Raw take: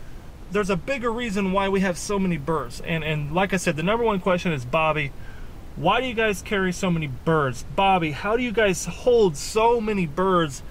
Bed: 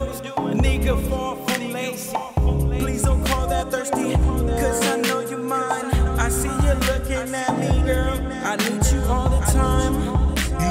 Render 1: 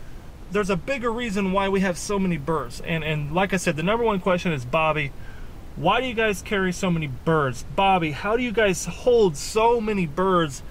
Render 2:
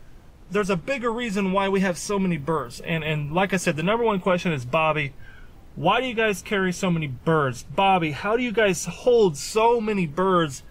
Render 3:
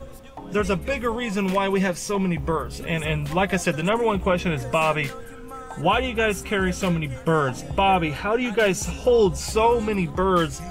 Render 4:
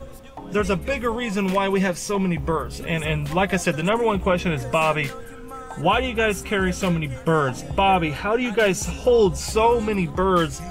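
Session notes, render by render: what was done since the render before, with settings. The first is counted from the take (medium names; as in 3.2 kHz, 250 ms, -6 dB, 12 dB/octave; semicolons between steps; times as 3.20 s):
no audible change
noise print and reduce 8 dB
add bed -15 dB
trim +1 dB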